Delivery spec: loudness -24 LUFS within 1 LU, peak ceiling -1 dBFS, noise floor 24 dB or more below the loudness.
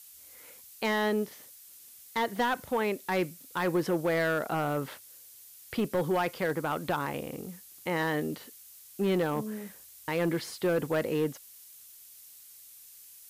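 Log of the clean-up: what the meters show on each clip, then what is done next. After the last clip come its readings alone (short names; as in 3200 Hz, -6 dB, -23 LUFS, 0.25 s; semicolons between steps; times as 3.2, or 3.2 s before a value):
clipped 1.3%; flat tops at -22.0 dBFS; noise floor -52 dBFS; noise floor target -55 dBFS; loudness -31.0 LUFS; peak -22.0 dBFS; loudness target -24.0 LUFS
-> clip repair -22 dBFS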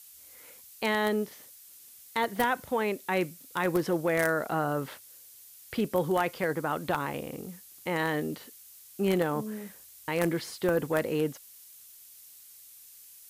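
clipped 0.0%; noise floor -52 dBFS; noise floor target -54 dBFS
-> noise print and reduce 6 dB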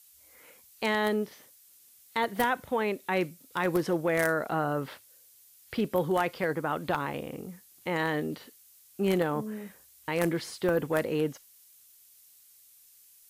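noise floor -58 dBFS; loudness -30.0 LUFS; peak -13.0 dBFS; loudness target -24.0 LUFS
-> gain +6 dB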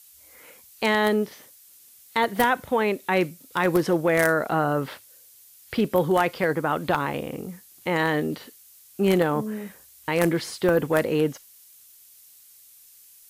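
loudness -24.0 LUFS; peak -7.0 dBFS; noise floor -52 dBFS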